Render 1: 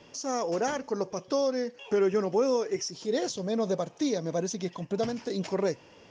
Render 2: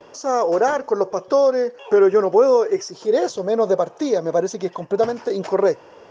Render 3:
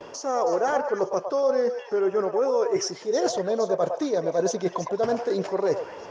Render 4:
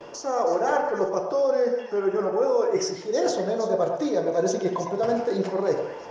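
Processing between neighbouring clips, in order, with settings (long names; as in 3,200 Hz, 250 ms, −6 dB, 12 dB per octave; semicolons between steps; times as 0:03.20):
noise gate with hold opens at −48 dBFS; flat-topped bell 760 Hz +10.5 dB 2.5 octaves; level +1.5 dB
reversed playback; downward compressor 6 to 1, threshold −26 dBFS, peak gain reduction 15 dB; reversed playback; echo through a band-pass that steps 107 ms, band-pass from 750 Hz, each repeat 1.4 octaves, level −3 dB; level +4 dB
convolution reverb, pre-delay 6 ms, DRR 3 dB; level −1.5 dB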